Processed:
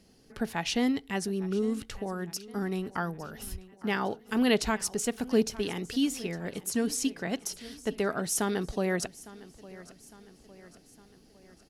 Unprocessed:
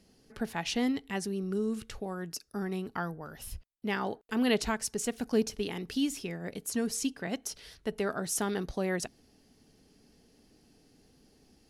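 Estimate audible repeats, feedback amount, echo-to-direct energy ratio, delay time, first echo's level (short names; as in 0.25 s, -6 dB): 3, 52%, -17.5 dB, 0.857 s, -19.0 dB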